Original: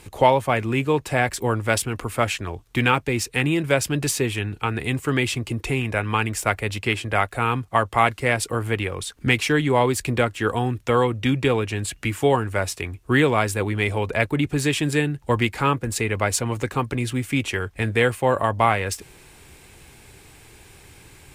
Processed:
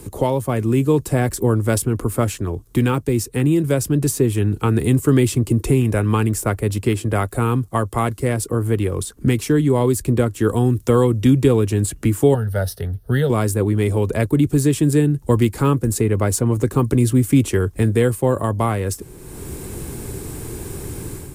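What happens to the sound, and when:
0:12.34–0:13.30: phaser with its sweep stopped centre 1,600 Hz, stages 8
whole clip: automatic gain control; drawn EQ curve 380 Hz 0 dB, 790 Hz −12 dB, 1,100 Hz −9 dB, 2,400 Hz −18 dB, 11,000 Hz +1 dB; multiband upward and downward compressor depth 40%; level +2.5 dB

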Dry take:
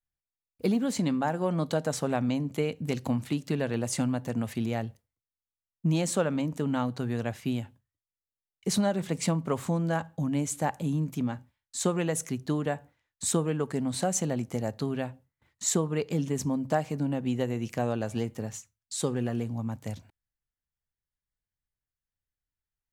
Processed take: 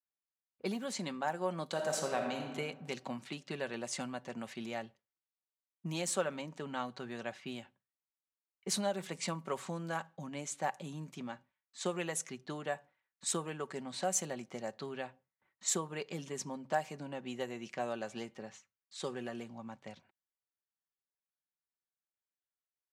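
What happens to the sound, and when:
0:01.71–0:02.52: thrown reverb, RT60 1.4 s, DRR 1.5 dB
whole clip: comb filter 5.3 ms, depth 40%; low-pass that shuts in the quiet parts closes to 1,700 Hz, open at −22.5 dBFS; high-pass filter 730 Hz 6 dB per octave; level −3.5 dB

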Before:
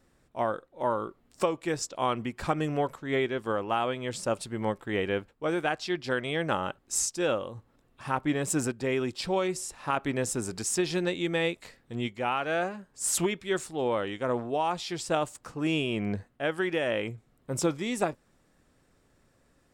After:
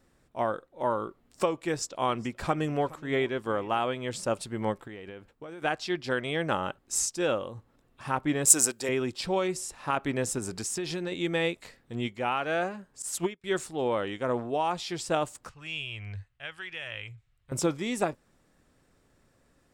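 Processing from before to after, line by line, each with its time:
0:01.66–0:03.85: single-tap delay 420 ms −21.5 dB
0:04.85–0:05.62: downward compressor 20 to 1, threshold −38 dBFS
0:08.45–0:08.89: bass and treble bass −13 dB, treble +15 dB
0:10.38–0:11.12: downward compressor 5 to 1, threshold −29 dBFS
0:13.02–0:13.44: expander for the loud parts 2.5 to 1, over −41 dBFS
0:15.49–0:17.52: drawn EQ curve 100 Hz 0 dB, 240 Hz −27 dB, 660 Hz −17 dB, 2,700 Hz −1 dB, 14,000 Hz −13 dB

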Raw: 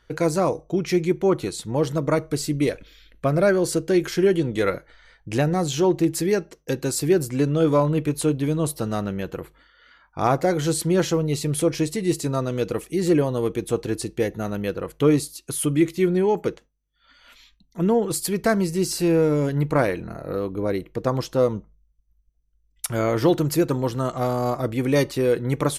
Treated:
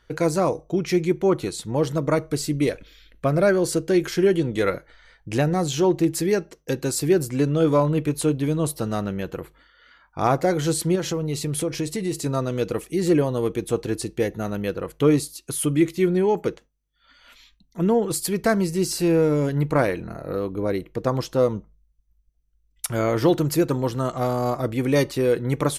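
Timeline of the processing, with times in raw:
0:10.95–0:12.26: downward compressor 4 to 1, threshold −21 dBFS

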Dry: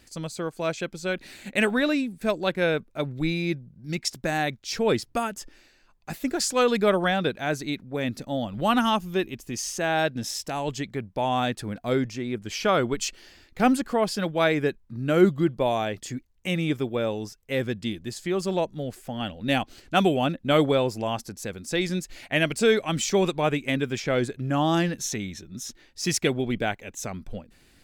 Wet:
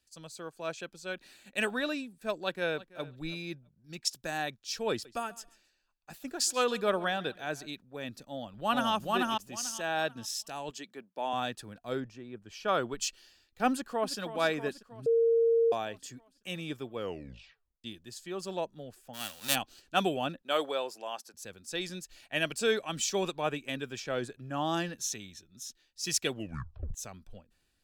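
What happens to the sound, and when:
0:02.39–0:03.03: delay throw 330 ms, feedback 15%, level −17.5 dB
0:04.91–0:07.71: repeating echo 138 ms, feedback 29%, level −19.5 dB
0:08.27–0:08.93: delay throw 440 ms, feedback 25%, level −1 dB
0:10.70–0:11.33: high-pass filter 200 Hz 24 dB per octave
0:12.00–0:12.68: high-shelf EQ 2,900 Hz −9 dB
0:13.71–0:14.18: delay throw 320 ms, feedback 70%, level −10 dB
0:15.06–0:15.72: beep over 460 Hz −13.5 dBFS
0:16.94: tape stop 0.90 s
0:19.13–0:19.54: spectral envelope flattened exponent 0.3
0:20.42–0:21.34: high-pass filter 430 Hz
0:26.32: tape stop 0.62 s
whole clip: low-shelf EQ 420 Hz −8.5 dB; notch filter 2,100 Hz, Q 5.9; multiband upward and downward expander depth 40%; level −5.5 dB

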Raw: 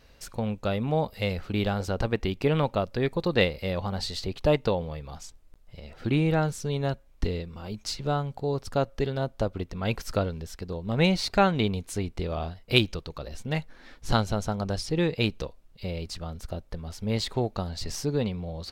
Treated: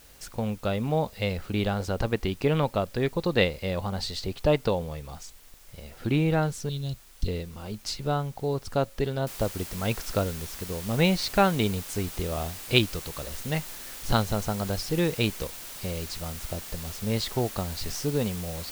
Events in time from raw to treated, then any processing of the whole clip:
0:06.69–0:07.28: drawn EQ curve 120 Hz 0 dB, 1,100 Hz −24 dB, 1,500 Hz −29 dB, 3,500 Hz +2 dB
0:09.27: noise floor change −55 dB −41 dB

